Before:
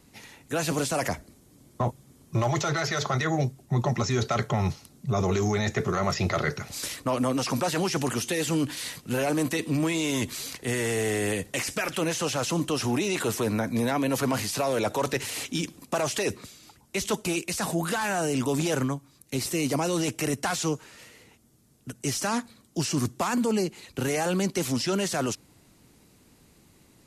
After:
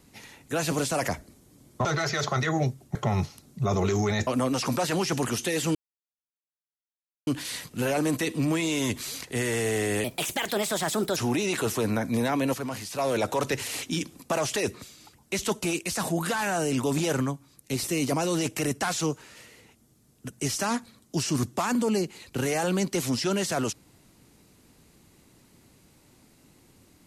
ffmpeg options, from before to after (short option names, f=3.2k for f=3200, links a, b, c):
-filter_complex "[0:a]asplit=9[a][b][c][d][e][f][g][h][i];[a]atrim=end=1.852[j];[b]atrim=start=2.628:end=3.732[k];[c]atrim=start=4.418:end=5.742[l];[d]atrim=start=7.108:end=8.59,asetpts=PTS-STARTPTS,afade=t=out:st=1.478:d=0.004:c=hsin,apad=pad_dur=1.52[m];[e]atrim=start=8.59:end=11.364,asetpts=PTS-STARTPTS,afade=t=in:d=0.004:c=hsin[n];[f]atrim=start=11.36:end=12.79,asetpts=PTS-STARTPTS,asetrate=56007,aresample=44100[o];[g]atrim=start=12.786:end=14.162[p];[h]atrim=start=14.158:end=14.612,asetpts=PTS-STARTPTS,volume=-7dB[q];[i]atrim=start=14.608[r];[j][k]acrossfade=d=0.004:c1=hsin:c2=hsin[s];[s][l]acrossfade=d=0.004:c1=hsin:c2=hsin[t];[m][n]concat=n=2:v=0:a=1[u];[t][u]acrossfade=d=0.004:c1=hsin:c2=hsin[v];[v][o]acrossfade=d=0.004:c1=hsin:c2=hsin[w];[w][p]acrossfade=d=0.004:c1=hsin:c2=hsin[x];[x][q]acrossfade=d=0.004:c1=hsin:c2=hsin[y];[y][r]acrossfade=d=0.004:c1=hsin:c2=hsin"